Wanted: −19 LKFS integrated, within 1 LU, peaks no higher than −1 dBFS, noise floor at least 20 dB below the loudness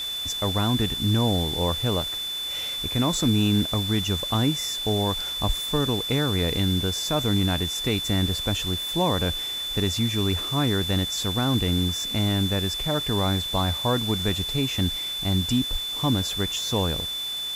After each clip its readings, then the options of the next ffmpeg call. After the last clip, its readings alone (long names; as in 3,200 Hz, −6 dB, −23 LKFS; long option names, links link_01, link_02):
interfering tone 3,500 Hz; level of the tone −28 dBFS; background noise floor −31 dBFS; target noise floor −44 dBFS; integrated loudness −24.0 LKFS; sample peak −10.5 dBFS; target loudness −19.0 LKFS
→ -af "bandreject=frequency=3500:width=30"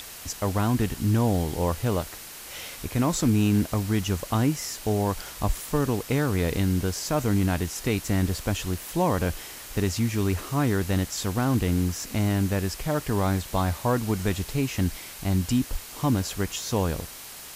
interfering tone none found; background noise floor −42 dBFS; target noise floor −47 dBFS
→ -af "afftdn=noise_reduction=6:noise_floor=-42"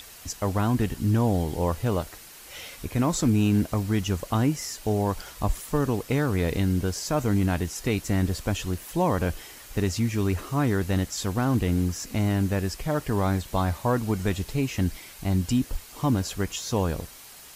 background noise floor −46 dBFS; target noise floor −47 dBFS
→ -af "afftdn=noise_reduction=6:noise_floor=-46"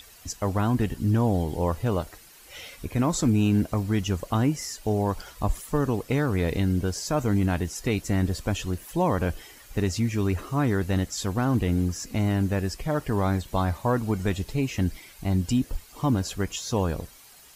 background noise floor −51 dBFS; integrated loudness −26.5 LKFS; sample peak −12.0 dBFS; target loudness −19.0 LKFS
→ -af "volume=7.5dB"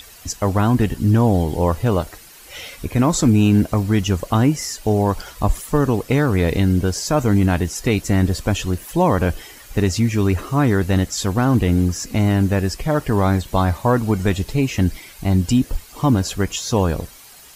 integrated loudness −19.0 LKFS; sample peak −4.5 dBFS; background noise floor −43 dBFS